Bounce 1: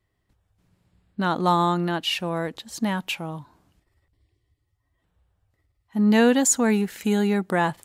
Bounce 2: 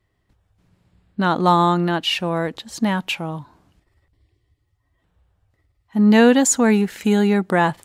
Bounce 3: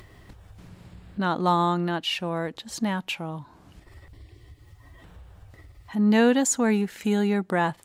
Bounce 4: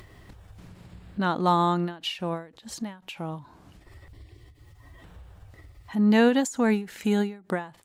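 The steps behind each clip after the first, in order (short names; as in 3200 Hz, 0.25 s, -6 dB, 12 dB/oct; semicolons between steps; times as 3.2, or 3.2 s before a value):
high shelf 8300 Hz -7.5 dB; gain +5 dB
upward compressor, threshold -22 dBFS; gain -6.5 dB
ending taper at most 150 dB/s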